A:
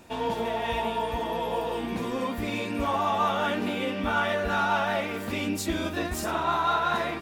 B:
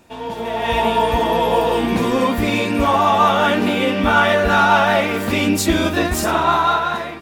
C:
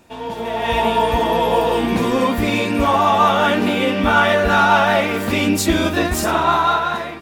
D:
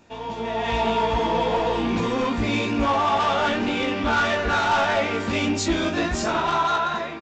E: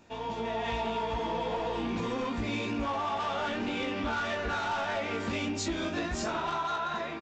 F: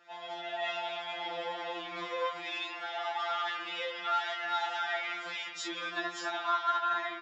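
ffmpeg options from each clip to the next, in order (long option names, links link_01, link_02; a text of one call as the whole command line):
ffmpeg -i in.wav -af "dynaudnorm=framelen=140:gausssize=9:maxgain=13.5dB" out.wav
ffmpeg -i in.wav -af anull out.wav
ffmpeg -i in.wav -filter_complex "[0:a]aresample=16000,asoftclip=type=tanh:threshold=-14dB,aresample=44100,asplit=2[link_01][link_02];[link_02]adelay=18,volume=-5dB[link_03];[link_01][link_03]amix=inputs=2:normalize=0,volume=-4dB" out.wav
ffmpeg -i in.wav -af "acompressor=threshold=-26dB:ratio=6,volume=-3.5dB" out.wav
ffmpeg -i in.wav -af "highpass=790,lowpass=4300,afftfilt=real='re*2.83*eq(mod(b,8),0)':imag='im*2.83*eq(mod(b,8),0)':win_size=2048:overlap=0.75,volume=4.5dB" out.wav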